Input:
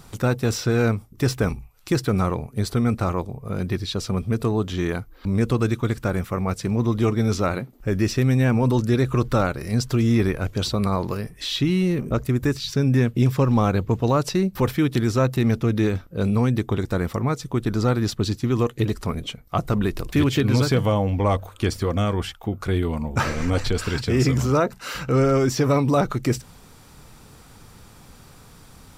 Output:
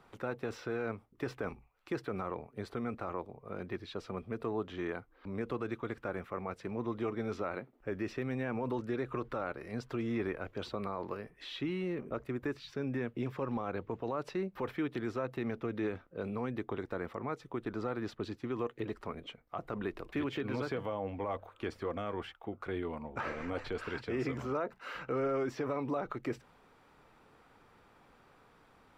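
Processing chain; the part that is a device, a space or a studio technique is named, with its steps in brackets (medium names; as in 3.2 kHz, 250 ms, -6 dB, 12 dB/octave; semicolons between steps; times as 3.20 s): DJ mixer with the lows and highs turned down (three-band isolator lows -14 dB, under 280 Hz, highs -20 dB, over 2.9 kHz; peak limiter -17 dBFS, peak gain reduction 8 dB); trim -9 dB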